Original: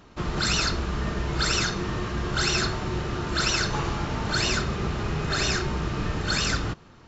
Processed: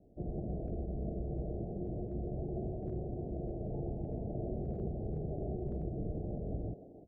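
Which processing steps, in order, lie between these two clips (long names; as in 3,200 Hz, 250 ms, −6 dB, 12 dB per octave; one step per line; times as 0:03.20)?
loose part that buzzes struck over −36 dBFS, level −26 dBFS
Butterworth low-pass 730 Hz 96 dB per octave
low-shelf EQ 350 Hz −2.5 dB
far-end echo of a speakerphone 300 ms, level −8 dB
level −7.5 dB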